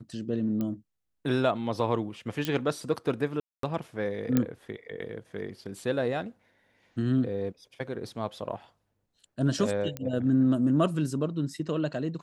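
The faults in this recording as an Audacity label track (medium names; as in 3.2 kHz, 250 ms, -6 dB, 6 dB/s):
0.610000	0.610000	pop -20 dBFS
2.450000	2.450000	pop -14 dBFS
3.400000	3.630000	dropout 233 ms
4.370000	4.370000	pop -11 dBFS
9.970000	9.970000	pop -18 dBFS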